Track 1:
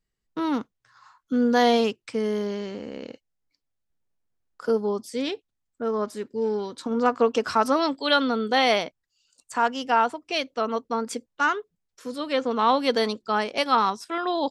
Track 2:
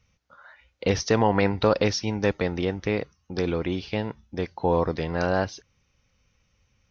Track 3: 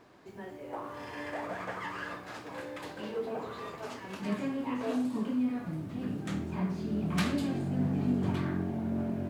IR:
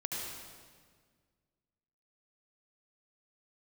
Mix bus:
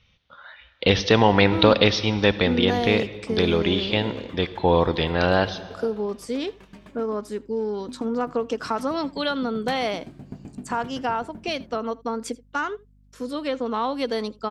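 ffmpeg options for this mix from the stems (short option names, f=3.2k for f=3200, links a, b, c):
-filter_complex "[0:a]equalizer=f=270:t=o:w=3:g=4,acompressor=threshold=-24dB:ratio=2.5,aeval=exprs='val(0)+0.00178*(sin(2*PI*50*n/s)+sin(2*PI*2*50*n/s)/2+sin(2*PI*3*50*n/s)/3+sin(2*PI*4*50*n/s)/4+sin(2*PI*5*50*n/s)/5)':c=same,adelay=1150,volume=-0.5dB,asplit=2[a][b];[b]volume=-23dB[c];[1:a]lowpass=f=3.5k:t=q:w=4.4,volume=2.5dB,asplit=2[d][e];[e]volume=-15dB[f];[2:a]aeval=exprs='val(0)*pow(10,-32*if(lt(mod(7.8*n/s,1),2*abs(7.8)/1000),1-mod(7.8*n/s,1)/(2*abs(7.8)/1000),(mod(7.8*n/s,1)-2*abs(7.8)/1000)/(1-2*abs(7.8)/1000))/20)':c=same,adelay=2500,volume=-4dB,asplit=3[g][h][i];[g]atrim=end=7.18,asetpts=PTS-STARTPTS,afade=t=out:st=7.176:d=0.004:c=hsin[j];[h]atrim=start=7.18:end=7.8,asetpts=PTS-STARTPTS,volume=0[k];[i]atrim=start=7.8,asetpts=PTS-STARTPTS,afade=t=in:d=0.004:c=hsin[l];[j][k][l]concat=n=3:v=0:a=1,asplit=2[m][n];[n]volume=-10dB[o];[3:a]atrim=start_sample=2205[p];[f][o]amix=inputs=2:normalize=0[q];[q][p]afir=irnorm=-1:irlink=0[r];[c]aecho=0:1:81:1[s];[a][d][m][r][s]amix=inputs=5:normalize=0"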